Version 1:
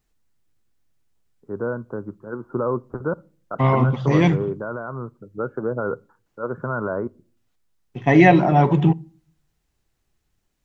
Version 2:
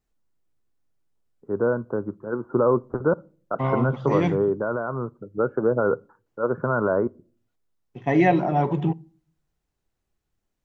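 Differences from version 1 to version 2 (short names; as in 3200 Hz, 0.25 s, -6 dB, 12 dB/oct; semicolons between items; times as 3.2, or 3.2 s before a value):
second voice -9.0 dB; master: add bell 510 Hz +4.5 dB 2.4 oct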